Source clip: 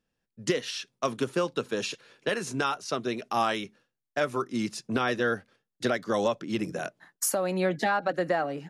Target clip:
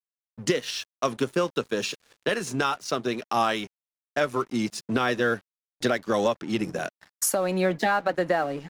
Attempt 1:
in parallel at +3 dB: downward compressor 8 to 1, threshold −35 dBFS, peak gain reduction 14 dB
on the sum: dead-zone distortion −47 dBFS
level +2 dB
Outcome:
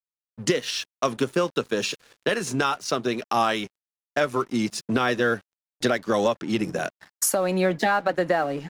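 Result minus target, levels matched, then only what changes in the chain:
downward compressor: peak gain reduction −8.5 dB
change: downward compressor 8 to 1, threshold −44.5 dBFS, peak gain reduction 22.5 dB

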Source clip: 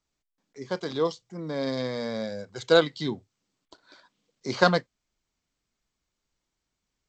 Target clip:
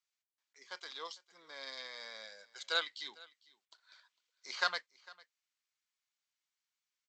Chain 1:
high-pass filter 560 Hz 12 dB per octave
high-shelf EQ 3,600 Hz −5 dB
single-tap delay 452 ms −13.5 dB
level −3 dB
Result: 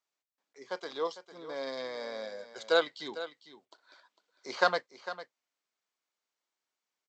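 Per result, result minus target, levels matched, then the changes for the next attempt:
500 Hz band +11.5 dB; echo-to-direct +9 dB
change: high-pass filter 1,700 Hz 12 dB per octave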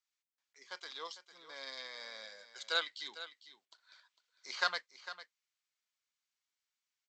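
echo-to-direct +9 dB
change: single-tap delay 452 ms −22.5 dB

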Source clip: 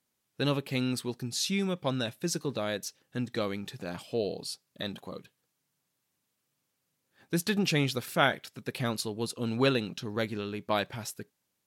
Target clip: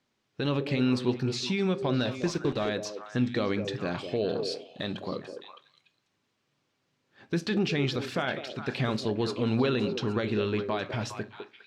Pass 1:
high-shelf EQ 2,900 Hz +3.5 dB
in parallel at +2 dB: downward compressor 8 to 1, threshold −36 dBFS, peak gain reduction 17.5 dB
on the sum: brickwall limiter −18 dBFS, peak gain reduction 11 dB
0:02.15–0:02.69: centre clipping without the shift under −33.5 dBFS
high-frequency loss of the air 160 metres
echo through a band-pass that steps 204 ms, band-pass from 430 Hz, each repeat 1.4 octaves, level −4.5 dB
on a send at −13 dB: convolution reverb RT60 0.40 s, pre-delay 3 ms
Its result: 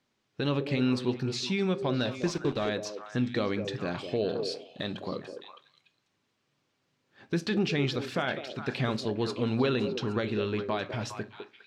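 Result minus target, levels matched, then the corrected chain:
downward compressor: peak gain reduction +7 dB
high-shelf EQ 2,900 Hz +3.5 dB
in parallel at +2 dB: downward compressor 8 to 1, threshold −28 dBFS, peak gain reduction 10.5 dB
on the sum: brickwall limiter −18 dBFS, peak gain reduction 12.5 dB
0:02.15–0:02.69: centre clipping without the shift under −33.5 dBFS
high-frequency loss of the air 160 metres
echo through a band-pass that steps 204 ms, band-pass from 430 Hz, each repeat 1.4 octaves, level −4.5 dB
on a send at −13 dB: convolution reverb RT60 0.40 s, pre-delay 3 ms

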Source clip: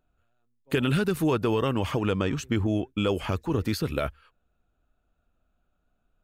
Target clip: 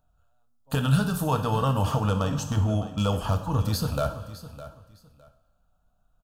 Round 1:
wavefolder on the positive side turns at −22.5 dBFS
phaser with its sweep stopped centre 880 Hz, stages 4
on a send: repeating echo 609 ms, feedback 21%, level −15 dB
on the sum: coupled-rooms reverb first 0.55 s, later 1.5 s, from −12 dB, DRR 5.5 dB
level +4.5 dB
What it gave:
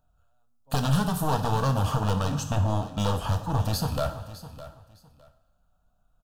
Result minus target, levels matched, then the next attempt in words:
wavefolder on the positive side: distortion +23 dB
wavefolder on the positive side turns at −16 dBFS
phaser with its sweep stopped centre 880 Hz, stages 4
on a send: repeating echo 609 ms, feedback 21%, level −15 dB
on the sum: coupled-rooms reverb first 0.55 s, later 1.5 s, from −12 dB, DRR 5.5 dB
level +4.5 dB

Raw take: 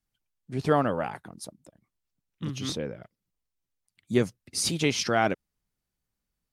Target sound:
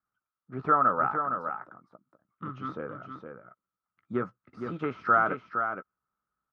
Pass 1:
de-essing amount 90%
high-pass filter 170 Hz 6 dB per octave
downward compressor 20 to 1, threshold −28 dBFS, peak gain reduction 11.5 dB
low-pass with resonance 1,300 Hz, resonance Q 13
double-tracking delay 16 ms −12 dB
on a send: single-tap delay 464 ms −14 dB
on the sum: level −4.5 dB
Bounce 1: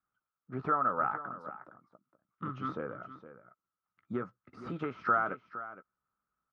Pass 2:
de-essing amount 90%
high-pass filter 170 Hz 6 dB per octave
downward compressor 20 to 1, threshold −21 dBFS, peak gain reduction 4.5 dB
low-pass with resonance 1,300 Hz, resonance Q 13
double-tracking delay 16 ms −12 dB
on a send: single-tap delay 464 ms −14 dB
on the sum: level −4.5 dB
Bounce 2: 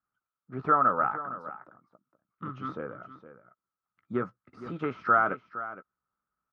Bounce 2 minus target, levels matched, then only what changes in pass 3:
echo-to-direct −7 dB
change: single-tap delay 464 ms −7 dB

